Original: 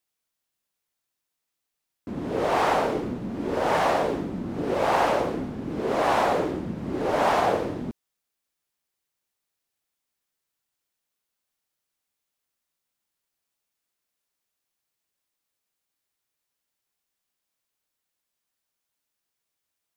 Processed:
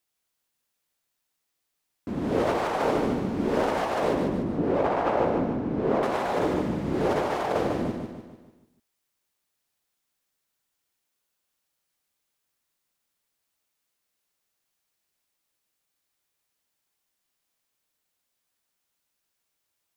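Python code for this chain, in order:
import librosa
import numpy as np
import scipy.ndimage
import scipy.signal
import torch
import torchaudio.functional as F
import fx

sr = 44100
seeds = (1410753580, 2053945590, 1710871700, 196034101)

y = fx.lowpass(x, sr, hz=1200.0, slope=6, at=(4.12, 6.03))
y = fx.over_compress(y, sr, threshold_db=-25.0, ratio=-0.5)
y = fx.echo_feedback(y, sr, ms=148, feedback_pct=47, wet_db=-5.0)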